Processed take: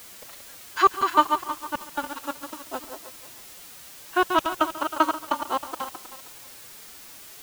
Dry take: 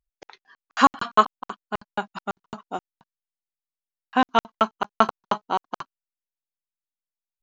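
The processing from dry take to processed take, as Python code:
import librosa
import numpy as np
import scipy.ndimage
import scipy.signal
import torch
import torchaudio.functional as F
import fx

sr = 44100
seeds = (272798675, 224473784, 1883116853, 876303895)

p1 = fx.reverse_delay_fb(x, sr, ms=158, feedback_pct=47, wet_db=-7.0)
p2 = fx.dmg_noise_colour(p1, sr, seeds[0], colour='white', level_db=-41.0)
p3 = fx.pitch_keep_formants(p2, sr, semitones=6.0)
p4 = p3 + fx.echo_single(p3, sr, ms=139, db=-17.5, dry=0)
y = p4 * 10.0 ** (-2.0 / 20.0)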